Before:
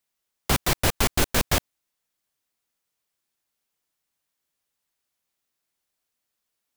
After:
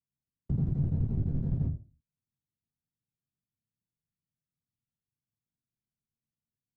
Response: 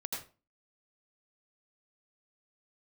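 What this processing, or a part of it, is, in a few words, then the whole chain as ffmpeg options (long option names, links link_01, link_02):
television next door: -filter_complex "[0:a]acompressor=threshold=-21dB:ratio=6,lowpass=290[link_01];[1:a]atrim=start_sample=2205[link_02];[link_01][link_02]afir=irnorm=-1:irlink=0,equalizer=frequency=125:width_type=o:width=1:gain=11,equalizer=frequency=500:width_type=o:width=1:gain=-6,equalizer=frequency=1000:width_type=o:width=1:gain=-7,equalizer=frequency=2000:width_type=o:width=1:gain=-4,equalizer=frequency=8000:width_type=o:width=1:gain=9,volume=-2.5dB"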